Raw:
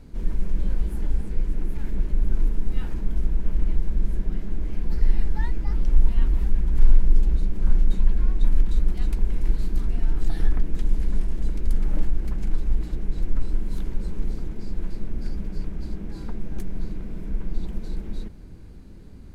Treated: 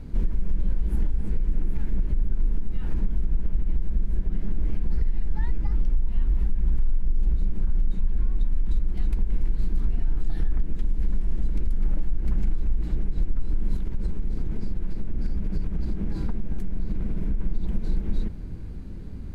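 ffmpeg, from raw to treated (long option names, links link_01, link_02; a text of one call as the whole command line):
ffmpeg -i in.wav -filter_complex "[0:a]asettb=1/sr,asplit=3[link_01][link_02][link_03];[link_01]atrim=end=13.764[link_04];[link_02]atrim=start=13.76:end=17.4,asetpts=PTS-STARTPTS,afade=type=in:duration=0.004:curve=qsin,afade=type=out:start_time=3.636:duration=0.004:curve=qsin,acompressor=threshold=-27dB:ratio=6:attack=3.2:release=140:knee=1:detection=peak[link_05];[link_03]atrim=start=17.396[link_06];[link_04][link_05]acrossfade=duration=0.004:curve1=hsin:curve2=qsin[link_07];[link_07][link_06]acrossfade=duration=0.004:curve1=qsin:curve2=hsin,acompressor=threshold=-24dB:ratio=2.5,alimiter=limit=-21.5dB:level=0:latency=1:release=108,bass=frequency=250:gain=5,treble=frequency=4000:gain=-5,volume=3dB" out.wav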